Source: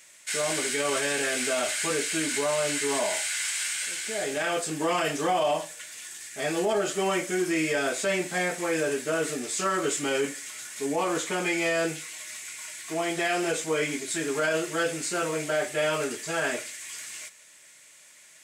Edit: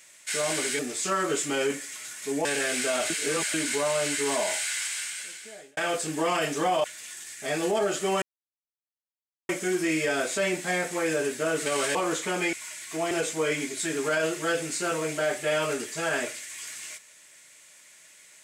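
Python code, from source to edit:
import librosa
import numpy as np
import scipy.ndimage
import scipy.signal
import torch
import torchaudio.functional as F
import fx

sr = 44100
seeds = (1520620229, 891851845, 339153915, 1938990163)

y = fx.edit(x, sr, fx.swap(start_s=0.79, length_s=0.29, other_s=9.33, other_length_s=1.66),
    fx.reverse_span(start_s=1.73, length_s=0.44),
    fx.fade_out_span(start_s=3.31, length_s=1.09),
    fx.cut(start_s=5.47, length_s=0.31),
    fx.insert_silence(at_s=7.16, length_s=1.27),
    fx.cut(start_s=11.57, length_s=0.93),
    fx.cut(start_s=13.08, length_s=0.34), tone=tone)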